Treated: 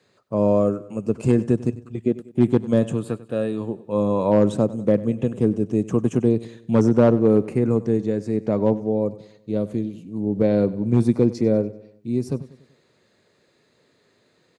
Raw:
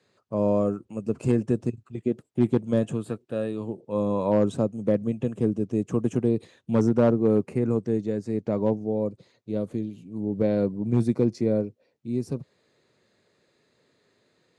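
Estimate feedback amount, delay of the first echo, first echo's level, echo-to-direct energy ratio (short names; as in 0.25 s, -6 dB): 48%, 96 ms, -18.0 dB, -17.0 dB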